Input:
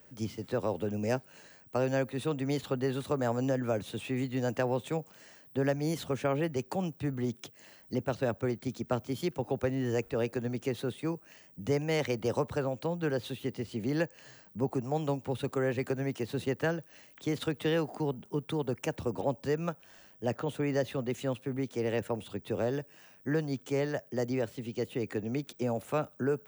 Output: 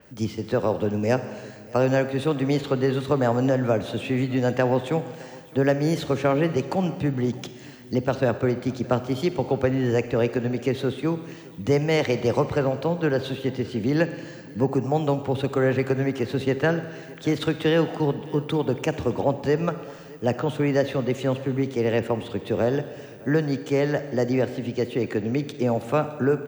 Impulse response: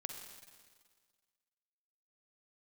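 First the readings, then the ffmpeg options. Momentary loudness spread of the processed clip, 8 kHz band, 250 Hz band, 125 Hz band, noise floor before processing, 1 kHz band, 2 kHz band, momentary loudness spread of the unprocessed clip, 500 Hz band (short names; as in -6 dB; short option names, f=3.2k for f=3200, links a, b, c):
7 LU, +4.0 dB, +9.0 dB, +9.0 dB, -58 dBFS, +9.0 dB, +8.5 dB, 7 LU, +9.0 dB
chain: -filter_complex "[0:a]aecho=1:1:614:0.0794,asplit=2[a][b];[1:a]atrim=start_sample=2205,lowpass=7.8k[c];[b][c]afir=irnorm=-1:irlink=0,volume=1.5dB[d];[a][d]amix=inputs=2:normalize=0,adynamicequalizer=threshold=0.00316:dfrequency=5100:dqfactor=0.7:tfrequency=5100:tqfactor=0.7:attack=5:release=100:ratio=0.375:range=2:mode=cutabove:tftype=highshelf,volume=3.5dB"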